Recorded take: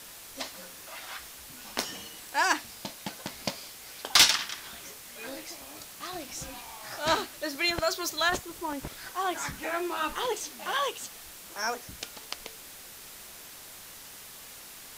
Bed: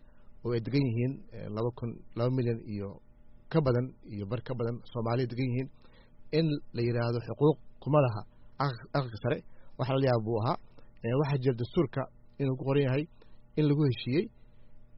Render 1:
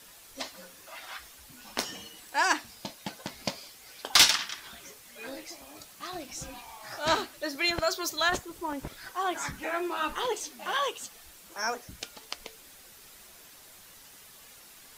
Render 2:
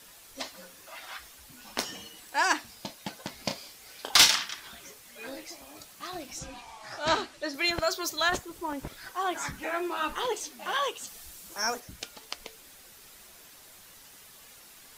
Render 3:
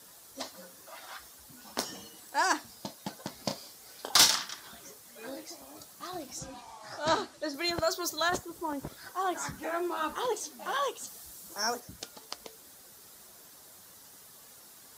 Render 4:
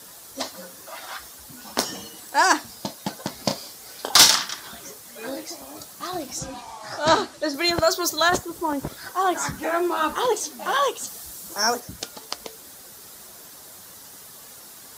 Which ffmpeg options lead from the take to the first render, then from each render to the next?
-af "afftdn=nr=7:nf=-47"
-filter_complex "[0:a]asettb=1/sr,asplit=3[s0][s1][s2];[s0]atrim=end=3.434[s3];[s1]atrim=start=3.43:end=4.39,asetpts=PTS-STARTPTS,afade=t=in:d=0.004:c=qsin,afade=t=out:st=0.956:d=0.004:c=qsin,asplit=2[s4][s5];[s5]adelay=33,volume=0.422[s6];[s4][s6]amix=inputs=2:normalize=0,atrim=end_sample=42336[s7];[s2]atrim=start=4.386[s8];[s3][s7]acrossfade=d=0.004:c1=hsin:c2=qsin[s9];[s9][s8]acrossfade=d=0.004:c1=qsin:c2=hsin,asettb=1/sr,asplit=3[s10][s11][s12];[s10]atrim=end=6.394[s13];[s11]atrim=start=6.39:end=7.54,asetpts=PTS-STARTPTS,afade=t=in:d=0.004:c=qsin,afade=t=out:st=1.146:d=0.004:c=qsin,lowpass=7800[s14];[s12]atrim=start=7.536[s15];[s13][s14]acrossfade=d=0.004:c1=hsin:c2=qsin[s16];[s16][s15]acrossfade=d=0.004:c1=qsin:c2=hsin,asettb=1/sr,asplit=3[s17][s18][s19];[s17]atrim=end=11.074[s20];[s18]atrim=start=11.07:end=11.8,asetpts=PTS-STARTPTS,afade=t=in:d=0.004:c=qsin,afade=t=out:st=0.726:d=0.004:c=qsin,bass=f=250:g=5,treble=f=4000:g=6[s21];[s19]atrim=start=11.796[s22];[s20][s21]acrossfade=d=0.004:c1=hsin:c2=qsin[s23];[s23][s22]acrossfade=d=0.004:c1=qsin:c2=hsin"
-af "highpass=77,equalizer=f=2500:w=1.4:g=-9.5"
-af "volume=2.99,alimiter=limit=0.794:level=0:latency=1"

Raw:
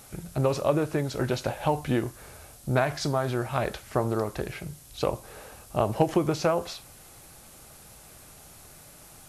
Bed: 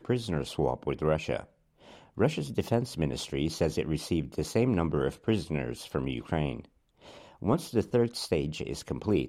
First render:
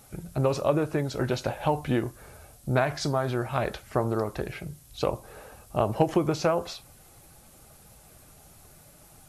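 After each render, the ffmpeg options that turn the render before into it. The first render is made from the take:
-af "afftdn=nr=6:nf=-50"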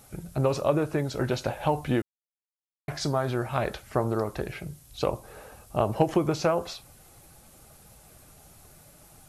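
-filter_complex "[0:a]asplit=3[s0][s1][s2];[s0]atrim=end=2.02,asetpts=PTS-STARTPTS,afade=t=out:st=2.016:d=0.004:c=hsin[s3];[s1]atrim=start=2.02:end=2.88,asetpts=PTS-STARTPTS,volume=0[s4];[s2]atrim=start=2.88,asetpts=PTS-STARTPTS,afade=t=in:d=0.004:c=hsin[s5];[s3][s4][s5]concat=n=3:v=0:a=1"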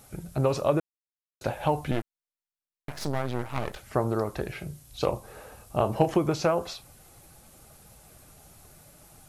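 -filter_complex "[0:a]asettb=1/sr,asplit=3[s0][s1][s2];[s0]atrim=end=1.914[s3];[s1]atrim=start=1.91:end=3.77,asetpts=PTS-STARTPTS,afade=t=in:d=0.004:c=qsin,afade=t=out:st=1.856:d=0.004:c=qsin,aeval=exprs='max(val(0),0)':c=same[s4];[s2]atrim=start=3.766[s5];[s3][s4]acrossfade=d=0.004:c1=hsin:c2=qsin[s6];[s6][s5]acrossfade=d=0.004:c1=qsin:c2=hsin,asettb=1/sr,asplit=3[s7][s8][s9];[s7]atrim=end=4.554[s10];[s8]atrim=start=4.55:end=6.12,asetpts=PTS-STARTPTS,afade=t=in:d=0.004:c=qsin,afade=t=out:st=1.566:d=0.004:c=qsin,asplit=2[s11][s12];[s12]adelay=33,volume=0.282[s13];[s11][s13]amix=inputs=2:normalize=0,atrim=end_sample=69237[s14];[s9]atrim=start=6.116[s15];[s10][s14]acrossfade=d=0.004:c1=hsin:c2=qsin[s16];[s16][s15]acrossfade=d=0.004:c1=qsin:c2=hsin,asplit=3[s17][s18][s19];[s17]atrim=end=0.8,asetpts=PTS-STARTPTS,afade=t=out:st=0.796:d=0.004:c=hsin[s20];[s18]atrim=start=0.8:end=1.41,asetpts=PTS-STARTPTS,volume=0[s21];[s19]atrim=start=1.41,asetpts=PTS-STARTPTS,afade=t=in:d=0.004:c=hsin[s22];[s20][s21][s22]concat=n=3:v=0:a=1"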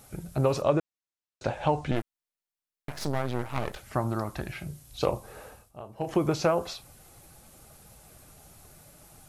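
-filter_complex "[0:a]asettb=1/sr,asplit=3[s0][s1][s2];[s0]atrim=end=0.624[s3];[s1]atrim=start=0.62:end=1.96,asetpts=PTS-STARTPTS,afade=t=in:d=0.004:c=qsin,afade=t=out:st=1.336:d=0.004:c=qsin,lowpass=f=7800:w=0.5412,lowpass=f=7800:w=1.3066[s4];[s2]atrim=start=1.956[s5];[s3][s4]acrossfade=d=0.004:c1=hsin:c2=qsin[s6];[s6][s5]acrossfade=d=0.004:c1=qsin:c2=hsin,asettb=1/sr,asplit=3[s7][s8][s9];[s7]atrim=end=3.944[s10];[s8]atrim=start=3.94:end=4.68,asetpts=PTS-STARTPTS,afade=t=in:d=0.004:c=qsin,afade=t=out:st=0.736:d=0.004:c=qsin,equalizer=f=450:w=3.4:g=-13.5[s11];[s9]atrim=start=4.676[s12];[s10][s11]acrossfade=d=0.004:c1=hsin:c2=qsin[s13];[s13][s12]acrossfade=d=0.004:c1=qsin:c2=hsin,asplit=3[s14][s15][s16];[s14]atrim=end=5.72,asetpts=PTS-STARTPTS,afade=t=out:st=5.47:d=0.25:silence=0.125893[s17];[s15]atrim=start=5.72:end=5.97,asetpts=PTS-STARTPTS,volume=0.126[s18];[s16]atrim=start=5.97,asetpts=PTS-STARTPTS,afade=t=in:d=0.25:silence=0.125893[s19];[s17][s18][s19]concat=n=3:v=0:a=1"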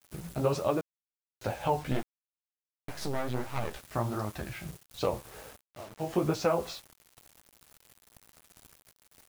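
-af "flanger=delay=9.6:depth=9.2:regen=1:speed=1.4:shape=sinusoidal,acrusher=bits=7:mix=0:aa=0.000001"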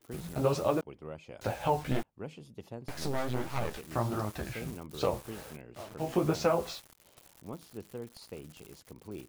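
-filter_complex "[1:a]volume=0.15[s0];[0:a][s0]amix=inputs=2:normalize=0"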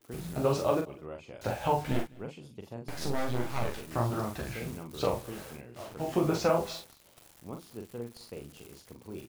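-filter_complex "[0:a]asplit=2[s0][s1];[s1]adelay=42,volume=0.562[s2];[s0][s2]amix=inputs=2:normalize=0,aecho=1:1:206:0.0668"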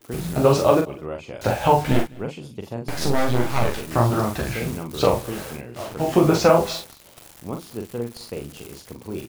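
-af "volume=3.55"

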